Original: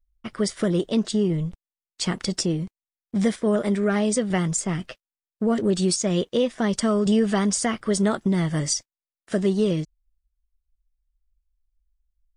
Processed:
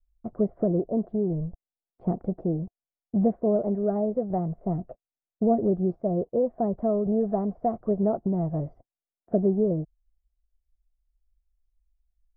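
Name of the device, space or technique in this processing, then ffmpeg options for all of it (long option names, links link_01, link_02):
under water: -af "lowpass=frequency=720:width=0.5412,lowpass=frequency=720:width=1.3066,equalizer=frequency=700:width_type=o:width=0.22:gain=9.5,adynamicequalizer=threshold=0.0178:dfrequency=240:dqfactor=0.83:tfrequency=240:tqfactor=0.83:attack=5:release=100:ratio=0.375:range=3.5:mode=cutabove:tftype=bell"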